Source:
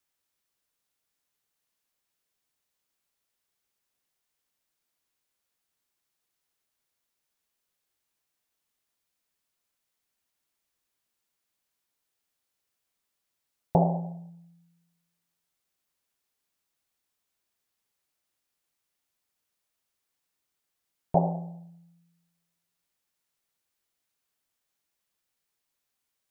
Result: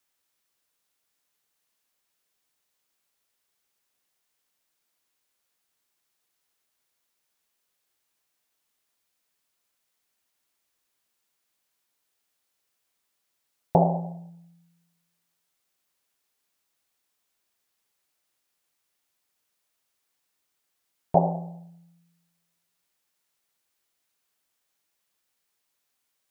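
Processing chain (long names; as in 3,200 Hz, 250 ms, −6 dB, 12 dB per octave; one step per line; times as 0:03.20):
low-shelf EQ 200 Hz −6 dB
level +4.5 dB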